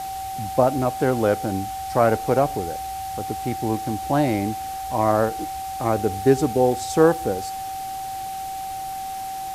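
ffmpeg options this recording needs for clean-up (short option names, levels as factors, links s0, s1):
-af "adeclick=t=4,bandreject=f=770:w=30,afwtdn=0.01"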